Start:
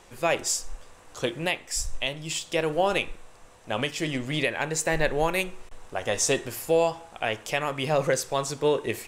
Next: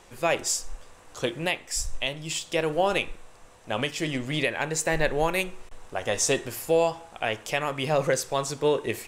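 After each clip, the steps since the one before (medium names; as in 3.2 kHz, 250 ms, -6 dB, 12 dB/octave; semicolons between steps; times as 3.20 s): no audible change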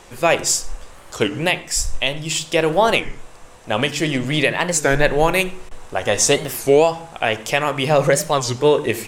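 on a send at -19.5 dB: reverberation RT60 0.30 s, pre-delay 76 ms; on the sum: warped record 33 1/3 rpm, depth 250 cents; trim +8.5 dB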